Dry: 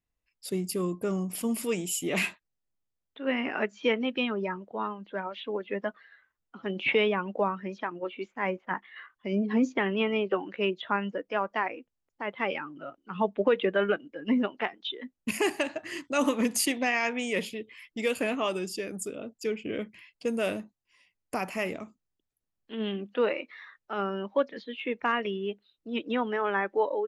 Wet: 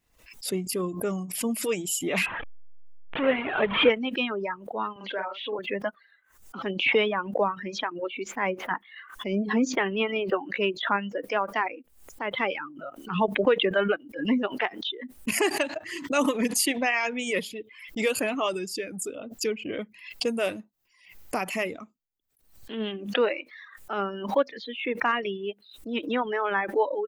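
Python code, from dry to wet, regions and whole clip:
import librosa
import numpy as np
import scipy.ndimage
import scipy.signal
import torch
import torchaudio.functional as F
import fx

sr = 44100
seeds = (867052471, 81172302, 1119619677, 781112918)

y = fx.chain(x, sr, fx.delta_mod(bps=16000, step_db=-26.5),
    fx.dynamic_eq(hz=500.0, q=2.3, threshold_db=-42.0, ratio=4.0, max_db=5), at=(2.26, 3.9))
y = fx.chain(y, sr, fx.bandpass_edges(low_hz=330.0, high_hz=5800.0),
    fx.doubler(ms=47.0, db=-4.0), at=(4.96, 5.59))
y = fx.dereverb_blind(y, sr, rt60_s=1.1)
y = fx.low_shelf(y, sr, hz=160.0, db=-5.5)
y = fx.pre_swell(y, sr, db_per_s=98.0)
y = y * 10.0 ** (3.0 / 20.0)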